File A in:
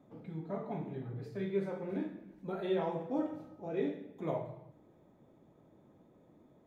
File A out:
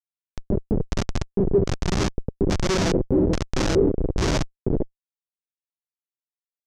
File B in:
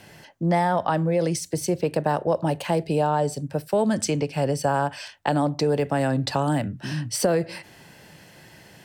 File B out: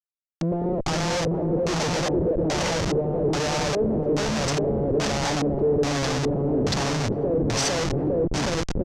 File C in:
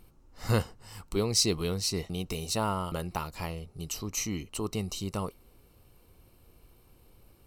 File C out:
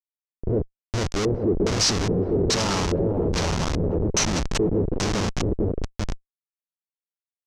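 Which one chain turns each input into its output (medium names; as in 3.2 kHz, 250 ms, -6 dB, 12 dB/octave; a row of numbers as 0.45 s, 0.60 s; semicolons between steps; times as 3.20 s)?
dynamic bell 150 Hz, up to -3 dB, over -39 dBFS, Q 0.78; on a send: bouncing-ball echo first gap 450 ms, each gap 0.9×, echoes 5; on the sum: compression 8:1, threshold -23 dBFS; Schmitt trigger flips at -32.5 dBFS; LFO low-pass square 1.2 Hz 430–6000 Hz; normalise loudness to -24 LUFS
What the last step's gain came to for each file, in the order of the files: +18.0 dB, +4.0 dB, +11.0 dB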